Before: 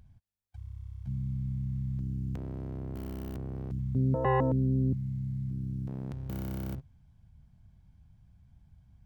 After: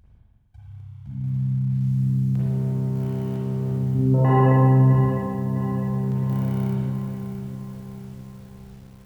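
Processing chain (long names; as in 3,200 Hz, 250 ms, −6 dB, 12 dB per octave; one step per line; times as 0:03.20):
spring reverb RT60 1.8 s, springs 38/50/56 ms, chirp 65 ms, DRR −6.5 dB
feedback echo at a low word length 657 ms, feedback 55%, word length 8 bits, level −9 dB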